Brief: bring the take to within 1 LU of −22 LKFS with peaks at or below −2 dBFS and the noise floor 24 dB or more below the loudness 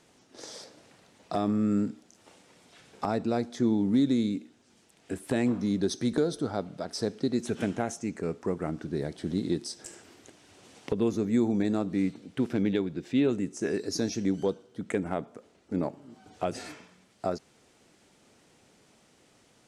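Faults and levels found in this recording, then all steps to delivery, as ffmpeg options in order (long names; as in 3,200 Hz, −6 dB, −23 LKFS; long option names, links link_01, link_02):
integrated loudness −30.0 LKFS; sample peak −15.0 dBFS; target loudness −22.0 LKFS
→ -af "volume=8dB"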